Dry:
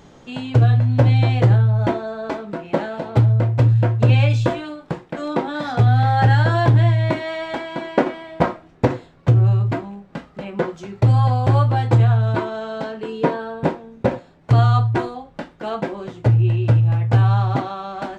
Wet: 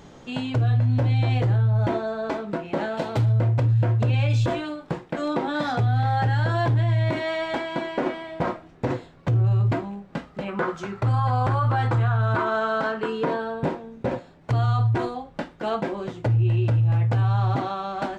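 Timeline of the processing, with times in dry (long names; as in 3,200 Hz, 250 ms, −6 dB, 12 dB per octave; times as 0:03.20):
0:02.97–0:03.39: high-shelf EQ 2,700 Hz +10.5 dB
0:10.48–0:13.25: parametric band 1,300 Hz +12 dB 0.97 octaves
whole clip: brickwall limiter −15 dBFS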